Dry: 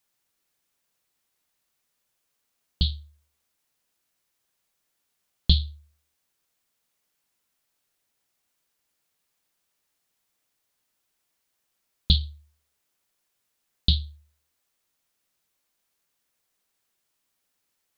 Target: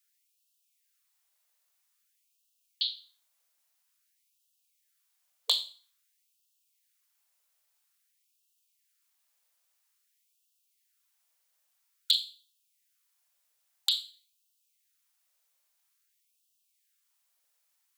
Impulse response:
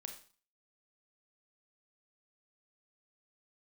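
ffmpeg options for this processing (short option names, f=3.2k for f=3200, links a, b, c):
-filter_complex "[0:a]aeval=exprs='0.422*(abs(mod(val(0)/0.422+3,4)-2)-1)':c=same,asplit=2[a][b];[1:a]atrim=start_sample=2205,highshelf=f=4.2k:g=10[c];[b][c]afir=irnorm=-1:irlink=0,volume=0dB[d];[a][d]amix=inputs=2:normalize=0,afftfilt=real='re*gte(b*sr/1024,450*pow(2600/450,0.5+0.5*sin(2*PI*0.5*pts/sr)))':imag='im*gte(b*sr/1024,450*pow(2600/450,0.5+0.5*sin(2*PI*0.5*pts/sr)))':win_size=1024:overlap=0.75,volume=-6.5dB"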